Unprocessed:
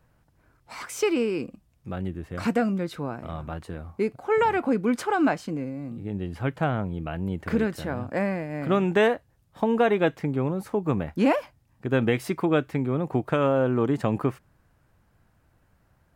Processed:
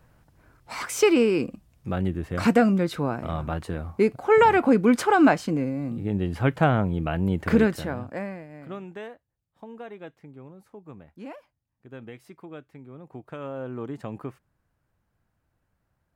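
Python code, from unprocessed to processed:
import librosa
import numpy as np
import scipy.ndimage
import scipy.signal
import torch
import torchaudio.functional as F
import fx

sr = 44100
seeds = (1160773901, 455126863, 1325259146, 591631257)

y = fx.gain(x, sr, db=fx.line((7.65, 5.0), (8.23, -7.0), (9.07, -19.0), (12.83, -19.0), (13.74, -10.5)))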